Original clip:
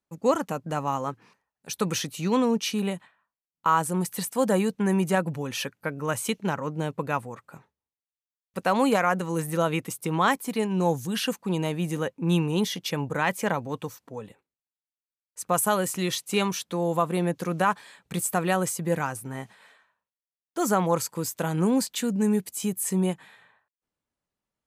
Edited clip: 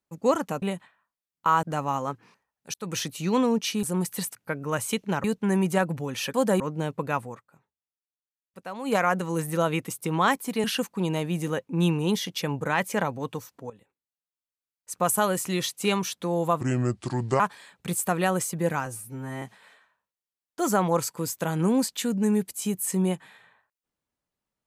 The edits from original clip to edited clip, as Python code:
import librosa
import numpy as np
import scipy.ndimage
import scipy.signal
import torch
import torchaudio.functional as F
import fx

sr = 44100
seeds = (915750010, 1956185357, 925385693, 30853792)

y = fx.edit(x, sr, fx.fade_in_span(start_s=1.73, length_s=0.28),
    fx.move(start_s=2.82, length_s=1.01, to_s=0.62),
    fx.swap(start_s=4.35, length_s=0.26, other_s=5.71, other_length_s=0.89),
    fx.fade_down_up(start_s=7.32, length_s=1.64, db=-13.5, fade_s=0.12),
    fx.cut(start_s=10.64, length_s=0.49),
    fx.fade_in_from(start_s=14.19, length_s=1.28, floor_db=-12.5),
    fx.speed_span(start_s=17.1, length_s=0.56, speed=0.71),
    fx.stretch_span(start_s=19.12, length_s=0.28, factor=2.0), tone=tone)